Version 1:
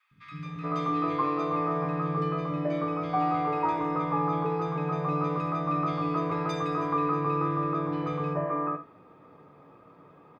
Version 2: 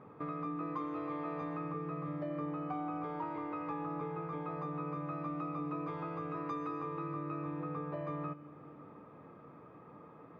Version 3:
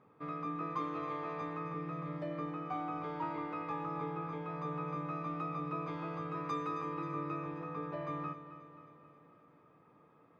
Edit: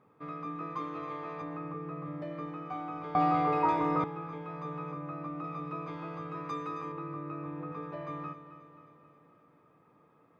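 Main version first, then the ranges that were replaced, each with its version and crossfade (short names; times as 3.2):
3
1.42–2.22 from 2
3.15–4.04 from 1
4.92–5.44 from 2
6.92–7.72 from 2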